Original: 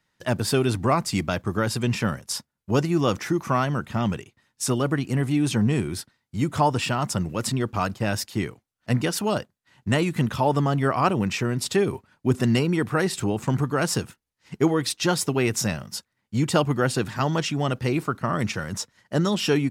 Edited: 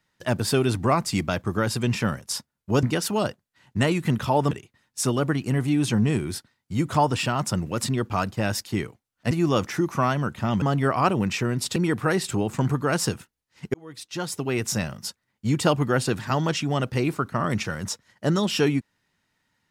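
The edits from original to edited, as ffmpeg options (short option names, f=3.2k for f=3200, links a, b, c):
-filter_complex "[0:a]asplit=7[a][b][c][d][e][f][g];[a]atrim=end=2.832[h];[b]atrim=start=8.938:end=10.622[i];[c]atrim=start=4.138:end=8.942[j];[d]atrim=start=2.828:end=4.142[k];[e]atrim=start=10.618:end=11.762[l];[f]atrim=start=12.648:end=14.63,asetpts=PTS-STARTPTS,afade=t=out:st=1.978:d=0.004:c=hsin[m];[g]atrim=start=14.63,asetpts=PTS-STARTPTS,afade=t=in:d=1.16[n];[h][i]acrossfade=d=0.004:c1=hsin:c2=hsin[o];[o][j]acrossfade=d=0.004:c1=hsin:c2=hsin[p];[p][k]acrossfade=d=0.004:c1=hsin:c2=hsin[q];[q][l]acrossfade=d=0.004:c1=hsin:c2=hsin[r];[m][n]concat=n=2:v=0:a=1[s];[r][s]acrossfade=d=0.004:c1=hsin:c2=hsin"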